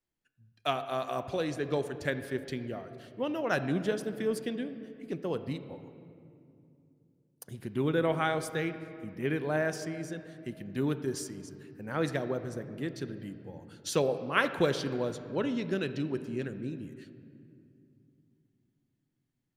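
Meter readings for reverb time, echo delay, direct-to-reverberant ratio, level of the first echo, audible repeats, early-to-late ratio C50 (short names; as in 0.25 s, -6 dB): 2.6 s, none, 10.0 dB, none, none, 11.0 dB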